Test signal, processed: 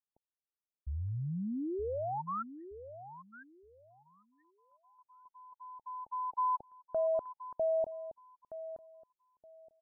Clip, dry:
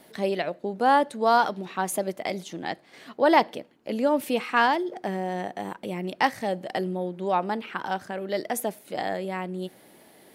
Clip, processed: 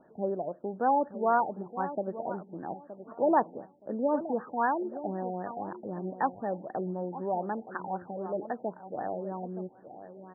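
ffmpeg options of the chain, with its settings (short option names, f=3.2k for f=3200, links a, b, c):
-filter_complex "[0:a]asplit=2[a][b];[b]adelay=921,lowpass=f=1.1k:p=1,volume=-11.5dB,asplit=2[c][d];[d]adelay=921,lowpass=f=1.1k:p=1,volume=0.24,asplit=2[e][f];[f]adelay=921,lowpass=f=1.1k:p=1,volume=0.24[g];[a][c][e][g]amix=inputs=4:normalize=0,afftfilt=real='re*lt(b*sr/1024,860*pow(1900/860,0.5+0.5*sin(2*PI*3.9*pts/sr)))':imag='im*lt(b*sr/1024,860*pow(1900/860,0.5+0.5*sin(2*PI*3.9*pts/sr)))':win_size=1024:overlap=0.75,volume=-5dB"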